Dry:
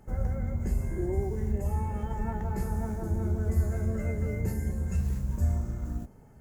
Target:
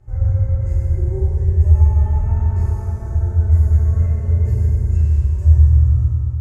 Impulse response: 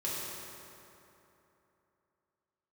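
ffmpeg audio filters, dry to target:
-filter_complex "[0:a]lowpass=8500,lowshelf=f=140:t=q:w=3:g=10[s0];[1:a]atrim=start_sample=2205[s1];[s0][s1]afir=irnorm=-1:irlink=0,volume=0.668"

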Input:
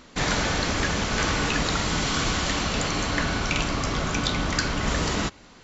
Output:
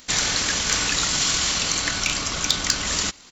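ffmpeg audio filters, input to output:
-af "atempo=1.7,acontrast=69,crystalizer=i=8:c=0,volume=0.237"

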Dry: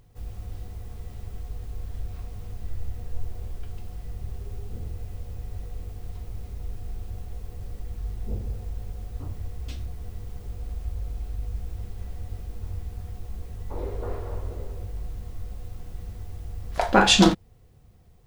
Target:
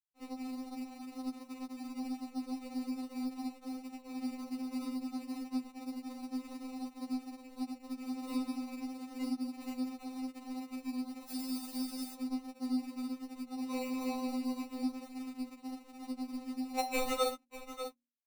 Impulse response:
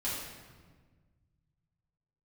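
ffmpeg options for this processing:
-filter_complex "[0:a]highpass=f=79:w=0.5412,highpass=f=79:w=1.3066,afreqshift=160,asettb=1/sr,asplit=3[s0][s1][s2];[s0]atrim=end=14.984[s3];[s1]atrim=start=14.98:end=15.5,asetpts=PTS-STARTPTS,afade=t=in:d=0.004:c=qsin,afade=t=out:st=0.516:d=0.004:c=qsin,aecho=1:1:5.1:0.43,atrim=end_sample=22932[s4];[s2]atrim=start=15.496[s5];[s3][s4]acrossfade=d=0.004:c1=hsin:c2=qsin[s6];[s6][s5]acrossfade=d=0.004:c1=qsin:c2=hsin,asplit=2[s7][s8];[s8]aecho=0:1:593:0.0841[s9];[s7][s9]amix=inputs=2:normalize=0,acrusher=samples=27:mix=1:aa=0.000001,asplit=3[s10][s11][s12];[s10]afade=t=out:st=11.27:d=0.02[s13];[s11]bass=f=250:g=3,treble=f=4000:g=14,afade=t=in:st=11.27:d=0.02,afade=t=out:st=12.14:d=0.02[s14];[s12]afade=t=in:st=12.14:d=0.02[s15];[s13][s14][s15]amix=inputs=3:normalize=0,aeval=exprs='sgn(val(0))*max(abs(val(0))-0.00891,0)':c=same,bandreject=f=60:t=h:w=6,bandreject=f=120:t=h:w=6,bandreject=f=180:t=h:w=6,bandreject=f=240:t=h:w=6,bandreject=f=300:t=h:w=6,bandreject=f=360:t=h:w=6,acompressor=threshold=0.00447:ratio=2.5,afftfilt=real='re*3.46*eq(mod(b,12),0)':imag='im*3.46*eq(mod(b,12),0)':win_size=2048:overlap=0.75,volume=2.82"

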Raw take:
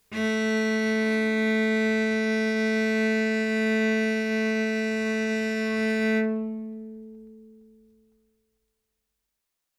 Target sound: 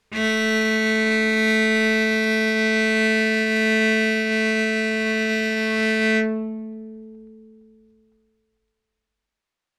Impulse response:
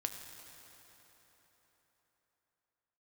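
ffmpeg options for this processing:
-af "crystalizer=i=7:c=0,adynamicsmooth=sensitivity=1:basefreq=1900,volume=1.33"

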